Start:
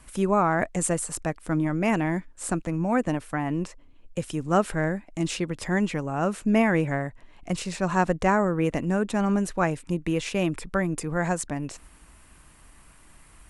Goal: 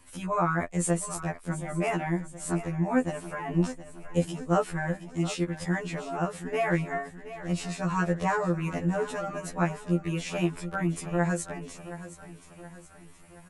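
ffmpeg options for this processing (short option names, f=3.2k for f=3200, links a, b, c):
-filter_complex "[0:a]asettb=1/sr,asplit=3[a][b][c];[a]atrim=end=3.504[d];[b]atrim=start=3.5:end=4.24,asetpts=PTS-STARTPTS,afade=t=in:d=0.004:c=qsin,afade=t=out:st=0.736:d=0.004:c=qsin,acontrast=34[e];[c]atrim=start=4.236[f];[d][e]acrossfade=d=0.004:c1=hsin:c2=qsin[g];[g][f]acrossfade=d=0.004:c1=qsin:c2=hsin,aecho=1:1:722|1444|2166|2888|3610:0.2|0.0998|0.0499|0.0249|0.0125,afftfilt=real='re*2*eq(mod(b,4),0)':imag='im*2*eq(mod(b,4),0)':win_size=2048:overlap=0.75,volume=-1.5dB"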